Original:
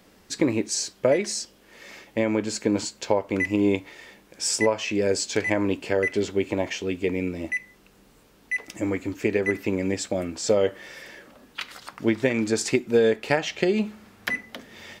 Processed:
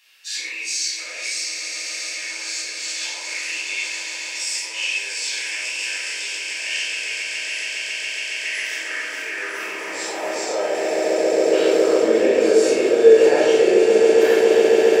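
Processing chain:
every bin's largest magnitude spread in time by 120 ms
notch filter 2,000 Hz, Q 8
echo that builds up and dies away 138 ms, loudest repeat 8, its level −10.5 dB
brickwall limiter −13.5 dBFS, peak gain reduction 10.5 dB
0:03.03–0:03.95: transient designer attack +10 dB, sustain +6 dB
convolution reverb RT60 0.85 s, pre-delay 12 ms, DRR −5 dB
high-pass filter sweep 2,400 Hz → 450 Hz, 0:08.30–0:11.67
level −7.5 dB

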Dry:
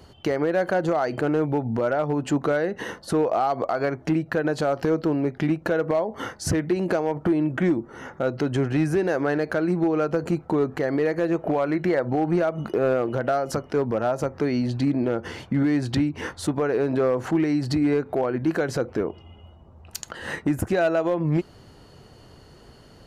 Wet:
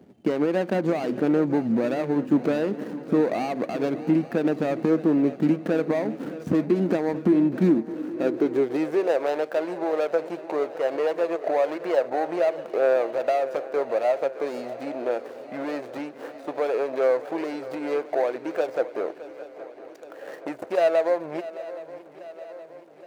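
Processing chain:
running median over 41 samples
feedback echo with a long and a short gap by turns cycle 820 ms, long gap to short 3 to 1, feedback 58%, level −16 dB
high-pass filter sweep 220 Hz → 580 Hz, 0:07.74–0:09.27
level −1.5 dB

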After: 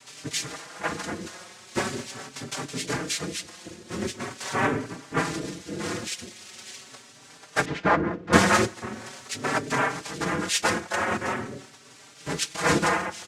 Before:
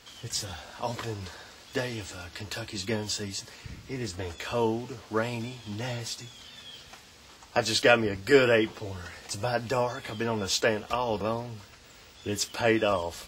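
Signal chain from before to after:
cochlear-implant simulation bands 3
0:07.65–0:08.33: low-pass filter 1,500 Hz 12 dB per octave
in parallel at −8 dB: soft clipping −21 dBFS, distortion −9 dB
on the sum: barber-pole flanger 4.7 ms +0.42 Hz
level +3 dB

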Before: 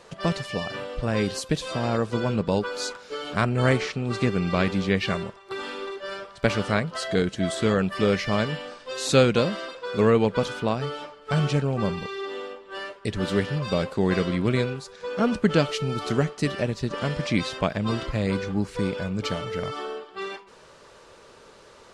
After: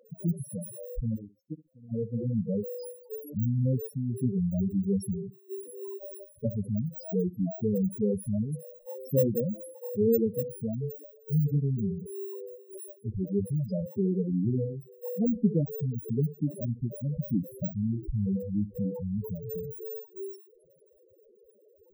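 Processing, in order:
samples in bit-reversed order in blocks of 32 samples
0:01.16–0:01.92: power curve on the samples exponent 3
on a send: flutter between parallel walls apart 11.5 metres, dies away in 0.23 s
on the sum: spectral peaks only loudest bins 4
level −1 dB

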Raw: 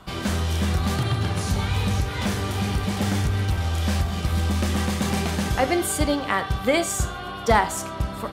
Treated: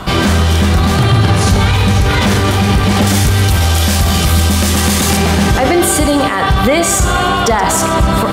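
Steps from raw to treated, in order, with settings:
high-shelf EQ 4,800 Hz −2.5 dB, from 0:03.07 +11 dB, from 0:05.17 −3 dB
boost into a limiter +24.5 dB
feedback echo at a low word length 126 ms, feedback 55%, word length 7 bits, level −13.5 dB
level −2.5 dB

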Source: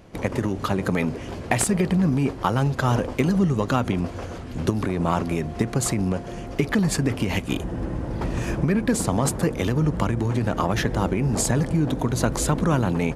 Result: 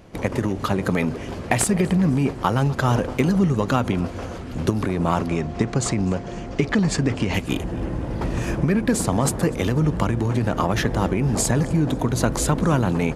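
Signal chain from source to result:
0:05.27–0:07.34: low-pass filter 7,900 Hz 24 dB per octave
tape delay 251 ms, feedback 73%, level −20 dB, low-pass 5,300 Hz
level +1.5 dB

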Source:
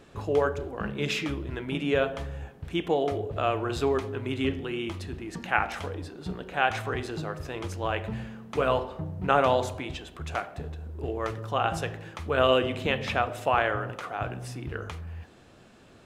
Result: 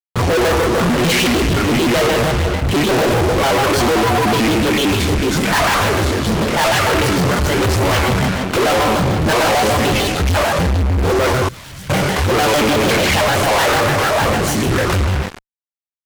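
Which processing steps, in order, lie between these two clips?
mains-hum notches 60/120/180/240/300/360 Hz
four-comb reverb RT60 1.3 s, combs from 27 ms, DRR 5 dB
in parallel at −12 dB: sample-and-hold swept by an LFO 25×, swing 60% 2.1 Hz
0:03.79–0:04.36: on the sum: steady tone 860 Hz −29 dBFS
multi-voice chorus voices 2, 0.97 Hz, delay 23 ms, depth 3 ms
noise gate with hold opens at −41 dBFS
fuzz pedal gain 46 dB, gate −48 dBFS
0:11.48–0:11.90: guitar amp tone stack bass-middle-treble 6-0-2
pitch modulation by a square or saw wave square 6.7 Hz, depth 250 cents

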